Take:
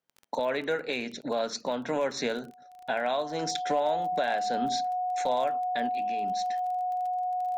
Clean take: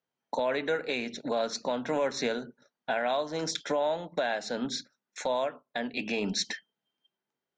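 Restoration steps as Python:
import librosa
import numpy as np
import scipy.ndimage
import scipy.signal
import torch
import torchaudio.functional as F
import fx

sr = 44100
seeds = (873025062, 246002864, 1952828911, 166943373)

y = fx.fix_declip(x, sr, threshold_db=-18.0)
y = fx.fix_declick_ar(y, sr, threshold=6.5)
y = fx.notch(y, sr, hz=730.0, q=30.0)
y = fx.fix_level(y, sr, at_s=5.89, step_db=10.5)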